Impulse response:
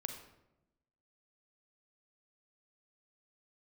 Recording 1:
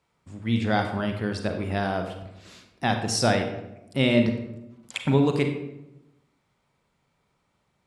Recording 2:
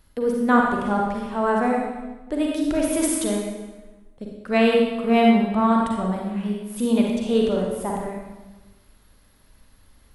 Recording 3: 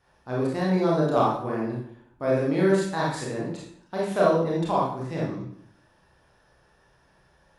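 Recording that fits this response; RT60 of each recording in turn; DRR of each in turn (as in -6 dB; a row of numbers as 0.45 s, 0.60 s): 1; 0.95 s, 1.2 s, 0.65 s; 5.0 dB, -1.5 dB, -5.0 dB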